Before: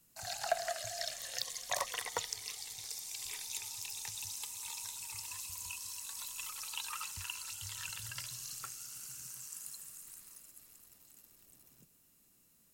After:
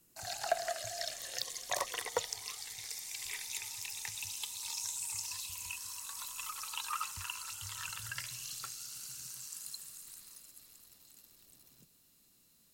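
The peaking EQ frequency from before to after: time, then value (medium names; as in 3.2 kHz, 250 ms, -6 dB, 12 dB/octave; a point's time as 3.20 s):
peaking EQ +8.5 dB 0.63 oct
2.03 s 360 Hz
2.76 s 2 kHz
4.12 s 2 kHz
5.07 s 8.9 kHz
5.93 s 1.2 kHz
7.99 s 1.2 kHz
8.62 s 4.1 kHz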